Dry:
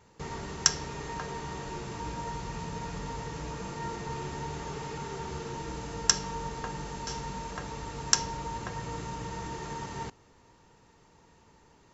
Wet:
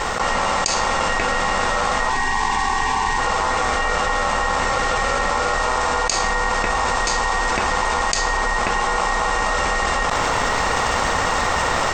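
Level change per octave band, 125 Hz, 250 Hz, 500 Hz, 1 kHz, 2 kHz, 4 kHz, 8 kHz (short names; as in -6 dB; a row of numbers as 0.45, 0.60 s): +7.0 dB, +9.5 dB, +16.5 dB, +19.5 dB, +22.5 dB, +10.5 dB, n/a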